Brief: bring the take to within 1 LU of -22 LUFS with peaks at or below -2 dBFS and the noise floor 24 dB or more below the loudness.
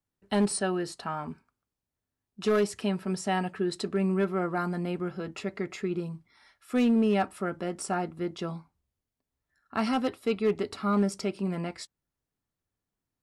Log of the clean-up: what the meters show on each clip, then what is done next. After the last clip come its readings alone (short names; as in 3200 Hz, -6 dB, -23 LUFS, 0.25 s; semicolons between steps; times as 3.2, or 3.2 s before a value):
clipped 0.5%; flat tops at -18.5 dBFS; loudness -30.0 LUFS; peak -18.5 dBFS; loudness target -22.0 LUFS
-> clip repair -18.5 dBFS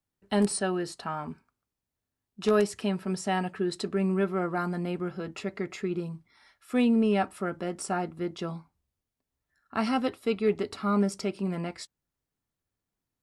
clipped 0.0%; loudness -29.5 LUFS; peak -12.0 dBFS; loudness target -22.0 LUFS
-> gain +7.5 dB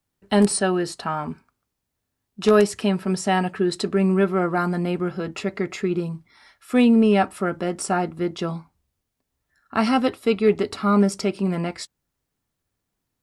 loudness -22.0 LUFS; peak -4.5 dBFS; noise floor -80 dBFS